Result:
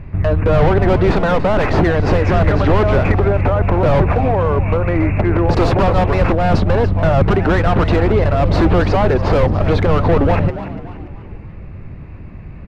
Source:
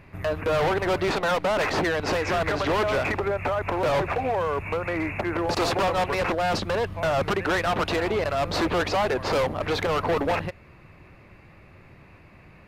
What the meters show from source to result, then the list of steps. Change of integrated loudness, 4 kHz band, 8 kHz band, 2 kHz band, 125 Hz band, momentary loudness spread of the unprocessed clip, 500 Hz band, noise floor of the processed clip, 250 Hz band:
+10.0 dB, +0.5 dB, no reading, +4.0 dB, +18.5 dB, 4 LU, +9.0 dB, -32 dBFS, +13.0 dB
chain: RIAA curve playback; on a send: frequency-shifting echo 289 ms, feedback 37%, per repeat +98 Hz, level -13.5 dB; on the sum: trim +6 dB

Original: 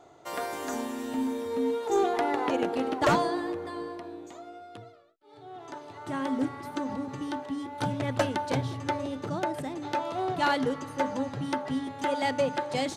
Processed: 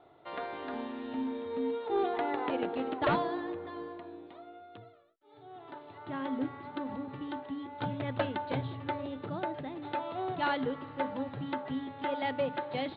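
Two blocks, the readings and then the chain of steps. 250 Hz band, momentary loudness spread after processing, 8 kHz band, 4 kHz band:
-5.0 dB, 16 LU, under -35 dB, -6.5 dB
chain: steep low-pass 4 kHz 72 dB/octave; trim -5 dB

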